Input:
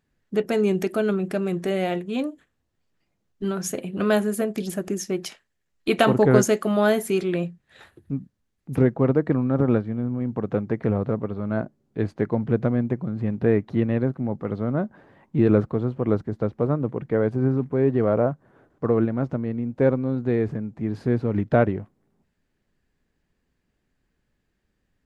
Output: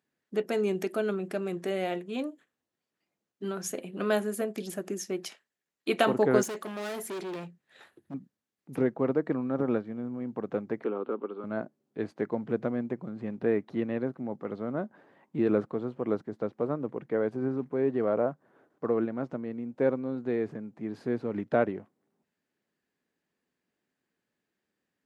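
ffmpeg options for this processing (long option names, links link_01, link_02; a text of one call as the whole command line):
ffmpeg -i in.wav -filter_complex "[0:a]asettb=1/sr,asplit=3[link_01][link_02][link_03];[link_01]atrim=end=6.434[link_04];[link_02]atrim=start=6.43:end=8.14,asetpts=PTS-STARTPTS,afade=type=in:duration=0.004:curve=qsin,afade=type=out:start_time=1.706:duration=0.004:curve=qsin,volume=27.5dB,asoftclip=hard,volume=-27.5dB[link_05];[link_03]atrim=start=8.136[link_06];[link_04][link_05]acrossfade=duration=0.004:curve1=hsin:curve2=qsin[link_07];[link_07][link_06]acrossfade=duration=0.004:curve1=qsin:curve2=hsin,asettb=1/sr,asplit=3[link_08][link_09][link_10];[link_08]atrim=end=10.844[link_11];[link_09]atrim=start=10.84:end=11.44,asetpts=PTS-STARTPTS,afade=type=in:duration=0.004:curve=qsin,afade=type=out:start_time=0.596:duration=0.004:curve=qsin,highpass=frequency=250:width=0.5412,highpass=frequency=250:width=1.3066,equalizer=frequency=380:width_type=q:width=4:gain=5,equalizer=frequency=640:width_type=q:width=4:gain=-9,equalizer=frequency=1300:width_type=q:width=4:gain=6,equalizer=frequency=1900:width_type=q:width=4:gain=-10,equalizer=frequency=3000:width_type=q:width=4:gain=6,lowpass=frequency=3600:width=0.5412,lowpass=frequency=3600:width=1.3066[link_12];[link_10]atrim=start=11.436[link_13];[link_11][link_12]acrossfade=duration=0.004:curve1=hsin:curve2=qsin[link_14];[link_14][link_13]acrossfade=duration=0.004:curve1=qsin:curve2=hsin,highpass=230,volume=-5.5dB" out.wav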